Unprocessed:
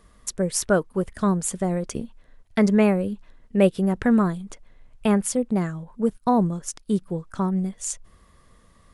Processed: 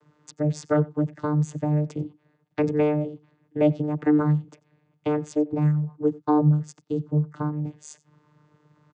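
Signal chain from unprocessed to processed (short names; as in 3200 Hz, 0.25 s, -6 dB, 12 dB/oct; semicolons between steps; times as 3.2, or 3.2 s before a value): vocoder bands 16, saw 150 Hz; echo 91 ms -22.5 dB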